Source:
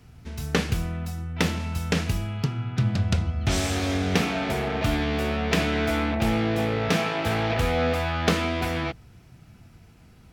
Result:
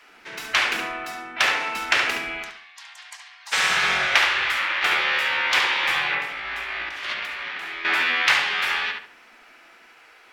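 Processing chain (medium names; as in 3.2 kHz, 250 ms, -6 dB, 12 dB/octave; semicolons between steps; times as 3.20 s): 2.43–3.53 s: elliptic high-pass 1.1 kHz, stop band 60 dB; spectral gate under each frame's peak -15 dB weak; peaking EQ 1.9 kHz +15 dB 2.4 oct; 6.17–7.85 s: compressor with a negative ratio -32 dBFS, ratio -1; filtered feedback delay 70 ms, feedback 36%, low-pass 3 kHz, level -3 dB; trim -1 dB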